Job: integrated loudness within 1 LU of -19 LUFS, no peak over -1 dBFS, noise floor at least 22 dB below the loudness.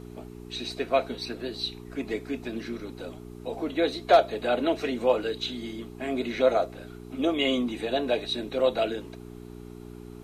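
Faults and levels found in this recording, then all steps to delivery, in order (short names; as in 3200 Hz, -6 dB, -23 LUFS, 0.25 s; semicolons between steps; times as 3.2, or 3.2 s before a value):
hum 60 Hz; harmonics up to 420 Hz; hum level -40 dBFS; loudness -28.0 LUFS; peak -9.0 dBFS; loudness target -19.0 LUFS
-> de-hum 60 Hz, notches 7; gain +9 dB; limiter -1 dBFS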